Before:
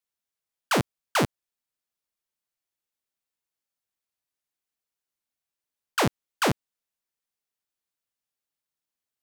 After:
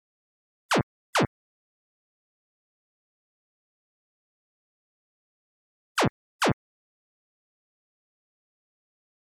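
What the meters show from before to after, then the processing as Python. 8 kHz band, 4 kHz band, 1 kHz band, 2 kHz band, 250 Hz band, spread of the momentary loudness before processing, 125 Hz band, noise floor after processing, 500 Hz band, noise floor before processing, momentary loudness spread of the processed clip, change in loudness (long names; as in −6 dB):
−2.0 dB, −0.5 dB, 0.0 dB, 0.0 dB, 0.0 dB, 4 LU, 0.0 dB, below −85 dBFS, 0.0 dB, below −85 dBFS, 4 LU, −0.5 dB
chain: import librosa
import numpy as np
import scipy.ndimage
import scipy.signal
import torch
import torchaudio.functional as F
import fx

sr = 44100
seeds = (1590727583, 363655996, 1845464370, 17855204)

y = fx.spec_gate(x, sr, threshold_db=-25, keep='strong')
y = fx.quant_dither(y, sr, seeds[0], bits=12, dither='none')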